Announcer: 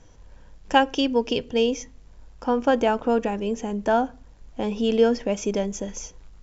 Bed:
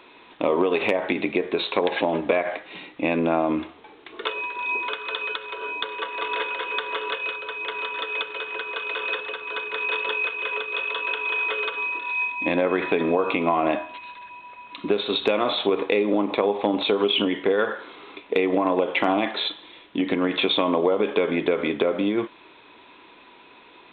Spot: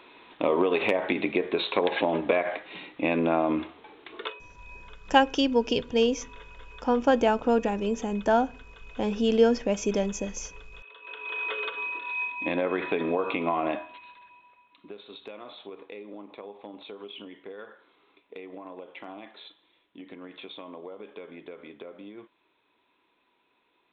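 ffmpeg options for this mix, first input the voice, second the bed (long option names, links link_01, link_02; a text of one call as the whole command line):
ffmpeg -i stem1.wav -i stem2.wav -filter_complex "[0:a]adelay=4400,volume=-1.5dB[link_01];[1:a]volume=14dB,afade=type=out:start_time=4.15:duration=0.25:silence=0.105925,afade=type=in:start_time=11:duration=0.5:silence=0.149624,afade=type=out:start_time=13.57:duration=1.14:silence=0.16788[link_02];[link_01][link_02]amix=inputs=2:normalize=0" out.wav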